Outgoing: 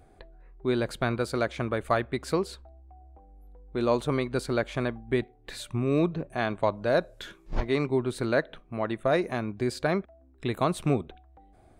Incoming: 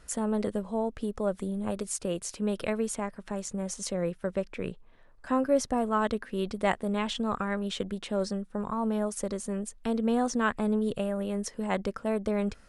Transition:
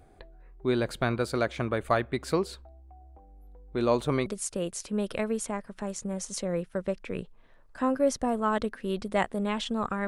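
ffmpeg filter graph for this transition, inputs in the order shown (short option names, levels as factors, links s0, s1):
-filter_complex "[0:a]apad=whole_dur=10.07,atrim=end=10.07,atrim=end=4.262[s0];[1:a]atrim=start=1.748:end=7.56[s1];[s0][s1]acrossfade=d=0.004:c1=hsin:c2=hsin"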